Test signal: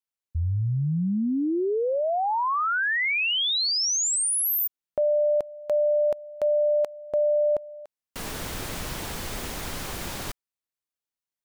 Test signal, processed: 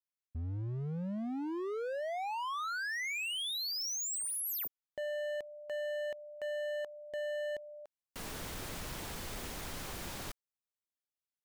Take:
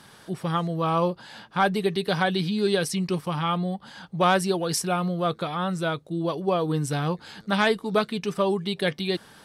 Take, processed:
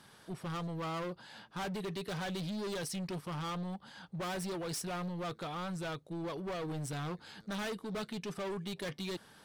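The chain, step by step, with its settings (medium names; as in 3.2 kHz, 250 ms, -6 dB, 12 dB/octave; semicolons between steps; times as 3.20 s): hard clipper -27.5 dBFS; trim -8.5 dB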